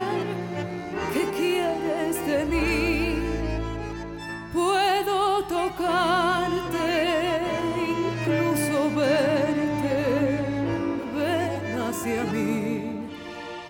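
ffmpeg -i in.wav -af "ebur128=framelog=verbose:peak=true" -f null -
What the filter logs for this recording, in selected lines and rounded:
Integrated loudness:
  I:         -25.1 LUFS
  Threshold: -35.2 LUFS
Loudness range:
  LRA:         2.4 LU
  Threshold: -44.7 LUFS
  LRA low:   -26.1 LUFS
  LRA high:  -23.7 LUFS
True peak:
  Peak:      -11.0 dBFS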